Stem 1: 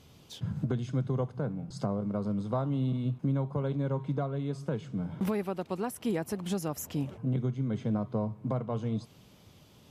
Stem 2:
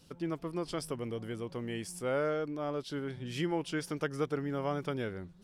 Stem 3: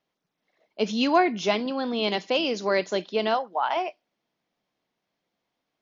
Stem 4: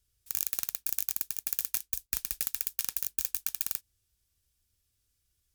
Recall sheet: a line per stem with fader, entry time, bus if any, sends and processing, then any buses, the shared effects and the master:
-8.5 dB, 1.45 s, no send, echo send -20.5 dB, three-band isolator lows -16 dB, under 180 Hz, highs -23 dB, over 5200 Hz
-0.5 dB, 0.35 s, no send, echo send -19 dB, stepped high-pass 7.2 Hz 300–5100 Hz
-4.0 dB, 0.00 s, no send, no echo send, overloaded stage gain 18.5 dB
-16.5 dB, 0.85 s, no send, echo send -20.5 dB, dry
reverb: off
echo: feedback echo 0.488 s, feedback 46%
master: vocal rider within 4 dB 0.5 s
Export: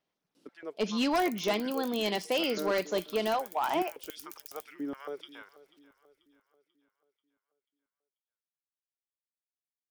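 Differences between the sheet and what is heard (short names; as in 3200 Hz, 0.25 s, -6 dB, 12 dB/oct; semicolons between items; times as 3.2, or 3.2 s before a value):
stem 1: muted; stem 2 -0.5 dB -> -8.5 dB; master: missing vocal rider within 4 dB 0.5 s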